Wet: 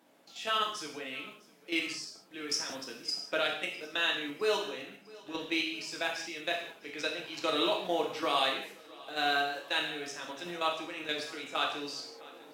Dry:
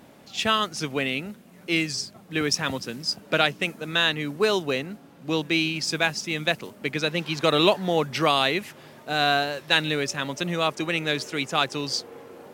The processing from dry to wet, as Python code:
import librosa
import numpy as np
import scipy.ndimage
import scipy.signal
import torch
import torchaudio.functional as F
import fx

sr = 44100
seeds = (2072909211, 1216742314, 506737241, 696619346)

p1 = scipy.signal.sosfilt(scipy.signal.butter(2, 330.0, 'highpass', fs=sr, output='sos'), x)
p2 = fx.level_steps(p1, sr, step_db=12)
p3 = p2 + fx.echo_feedback(p2, sr, ms=656, feedback_pct=59, wet_db=-22, dry=0)
p4 = fx.rev_gated(p3, sr, seeds[0], gate_ms=220, shape='falling', drr_db=-1.0)
y = p4 * librosa.db_to_amplitude(-8.0)